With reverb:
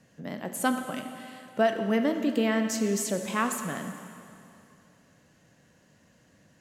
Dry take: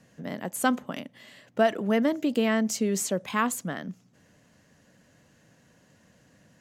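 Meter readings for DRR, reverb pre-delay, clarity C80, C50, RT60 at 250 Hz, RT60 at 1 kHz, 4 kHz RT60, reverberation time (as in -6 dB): 6.0 dB, 6 ms, 8.0 dB, 7.5 dB, 2.7 s, 2.6 s, 2.4 s, 2.6 s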